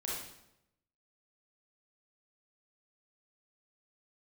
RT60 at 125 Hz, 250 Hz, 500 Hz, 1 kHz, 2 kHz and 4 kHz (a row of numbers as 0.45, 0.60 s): 1.1, 0.95, 0.90, 0.80, 0.75, 0.70 s